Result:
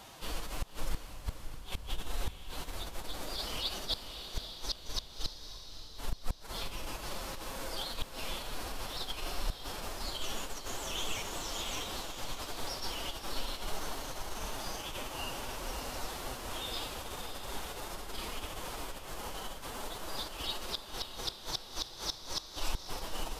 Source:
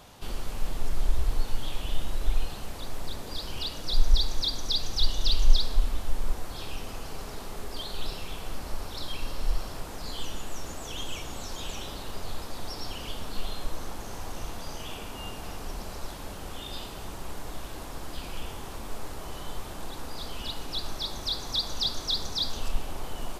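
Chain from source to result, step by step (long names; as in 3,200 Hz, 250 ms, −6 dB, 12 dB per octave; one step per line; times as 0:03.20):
phase-vocoder pitch shift with formants kept +4.5 semitones
low-shelf EQ 350 Hz −8 dB
gate with flip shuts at −23 dBFS, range −39 dB
on a send: feedback delay with all-pass diffusion 579 ms, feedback 45%, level −8 dB
on the sum: level +2 dB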